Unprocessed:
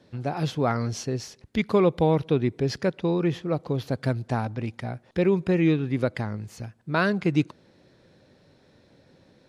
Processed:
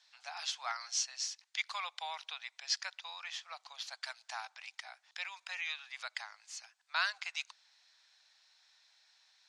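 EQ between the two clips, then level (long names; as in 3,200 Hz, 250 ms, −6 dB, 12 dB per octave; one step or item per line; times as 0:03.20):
Butterworth high-pass 730 Hz 48 dB per octave
low-pass filter 7,000 Hz 24 dB per octave
first difference
+6.5 dB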